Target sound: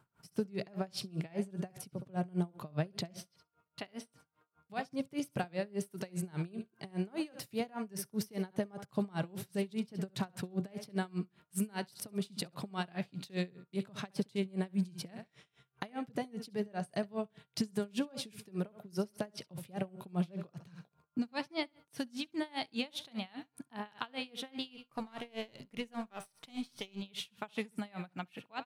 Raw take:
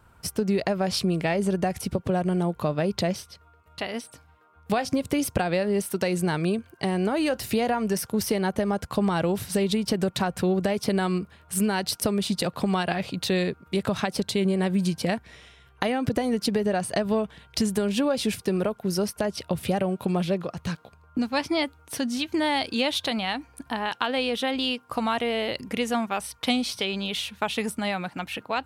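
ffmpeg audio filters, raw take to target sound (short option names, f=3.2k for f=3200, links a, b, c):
-filter_complex "[0:a]asettb=1/sr,asplit=3[a][b][c];[a]atrim=end=24.744[d];[b]atrim=start=24.74:end=27.02,asetpts=PTS-STARTPTS,afade=t=in:d=0.004:c=qsin,afade=t=out:st=2.276:d=0.004:c=qsin,aeval=exprs='if(lt(val(0),0),0.447*val(0),val(0))':c=same[e];[c]atrim=start=27.016[f];[d][e]acrossfade=d=0.004:c1=hsin:c2=qsin[g];[g][f]acrossfade=d=0.004:c1=qsin:c2=hsin,lowshelf=f=100:t=q:w=3:g=-10,bandreject=f=510:w=17,aecho=1:1:67|134|201:0.2|0.0579|0.0168,aeval=exprs='val(0)*pow(10,-27*(0.5-0.5*cos(2*PI*5*n/s))/20)':c=same,volume=-8.5dB"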